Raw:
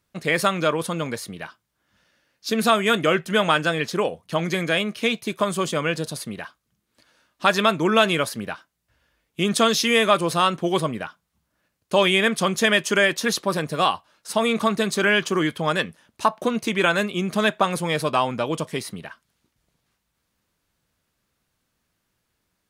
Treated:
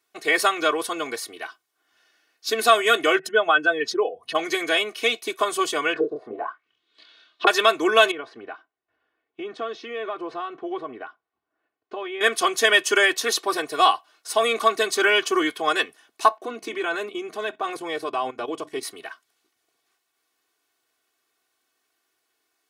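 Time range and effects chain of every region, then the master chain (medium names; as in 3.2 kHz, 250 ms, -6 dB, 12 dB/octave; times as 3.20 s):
3.19–4.35 s: spectral contrast enhancement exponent 1.7 + upward compressor, threshold -24 dBFS
5.93–7.47 s: band-stop 790 Hz + doubling 27 ms -4 dB + touch-sensitive low-pass 410–3900 Hz down, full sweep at -24.5 dBFS
8.11–12.21 s: compression 3:1, threshold -25 dBFS + tape spacing loss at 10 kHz 42 dB
16.37–18.83 s: tilt EQ -2 dB/octave + hum notches 50/100/150/200/250/300 Hz + level held to a coarse grid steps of 13 dB
whole clip: high-pass 400 Hz 12 dB/octave; comb 2.7 ms, depth 97%; trim -1 dB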